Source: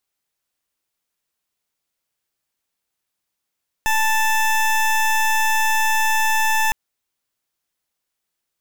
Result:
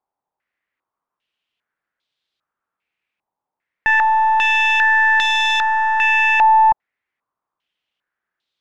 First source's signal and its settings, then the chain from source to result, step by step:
pulse 880 Hz, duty 20% -17.5 dBFS 2.86 s
bass shelf 78 Hz -8 dB; step-sequenced low-pass 2.5 Hz 880–3700 Hz

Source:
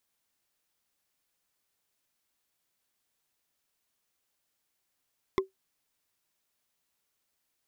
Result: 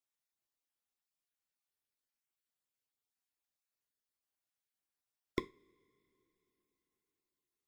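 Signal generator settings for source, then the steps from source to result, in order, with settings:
wood hit, lowest mode 383 Hz, decay 0.14 s, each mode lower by 3.5 dB, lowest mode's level -18.5 dB
random holes in the spectrogram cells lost 22%; two-slope reverb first 0.38 s, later 4.1 s, from -18 dB, DRR 5.5 dB; upward expansion 1.5:1, over -60 dBFS

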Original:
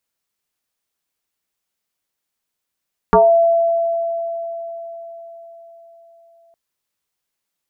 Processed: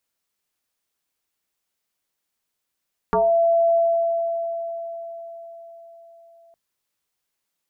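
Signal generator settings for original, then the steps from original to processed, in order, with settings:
FM tone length 3.41 s, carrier 672 Hz, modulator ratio 0.36, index 2.9, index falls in 0.29 s exponential, decay 4.68 s, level -6.5 dB
hum notches 50/100/150/200 Hz; peak limiter -14.5 dBFS

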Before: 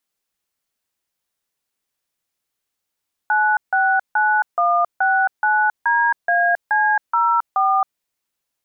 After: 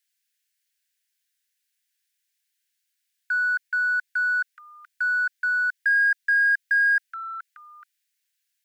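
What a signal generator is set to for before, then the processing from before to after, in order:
DTMF "969169DAC04", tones 270 ms, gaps 156 ms, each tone -16.5 dBFS
steep high-pass 1.5 kHz 96 dB/octave; in parallel at -10 dB: saturation -30.5 dBFS

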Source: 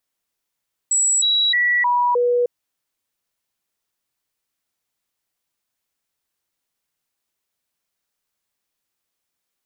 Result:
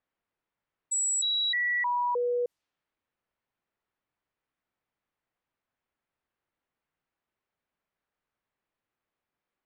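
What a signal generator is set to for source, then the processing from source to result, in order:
stepped sine 7.78 kHz down, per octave 1, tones 5, 0.31 s, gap 0.00 s -14.5 dBFS
level-controlled noise filter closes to 2.1 kHz, open at -18.5 dBFS; treble shelf 4.3 kHz -4 dB; peak limiter -24.5 dBFS

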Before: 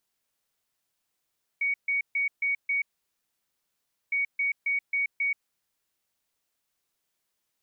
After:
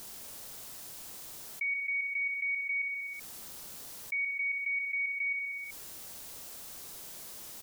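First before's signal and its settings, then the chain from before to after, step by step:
beep pattern sine 2.24 kHz, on 0.13 s, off 0.14 s, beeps 5, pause 1.30 s, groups 2, -23.5 dBFS
peaking EQ 2.1 kHz -6.5 dB 1.9 oct; feedback delay 63 ms, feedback 56%, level -11.5 dB; level flattener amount 70%

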